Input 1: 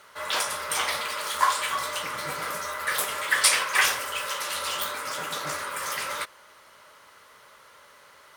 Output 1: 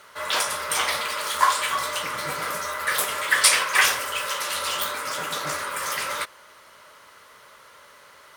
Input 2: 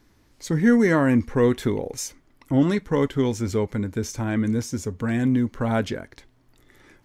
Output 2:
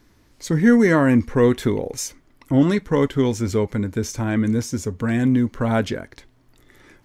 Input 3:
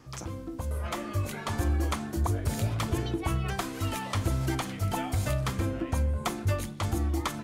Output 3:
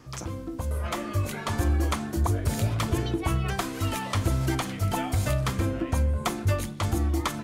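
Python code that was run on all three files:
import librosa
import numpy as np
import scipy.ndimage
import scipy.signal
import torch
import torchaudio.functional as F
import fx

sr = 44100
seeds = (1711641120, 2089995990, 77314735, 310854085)

y = fx.notch(x, sr, hz=820.0, q=27.0)
y = F.gain(torch.from_numpy(y), 3.0).numpy()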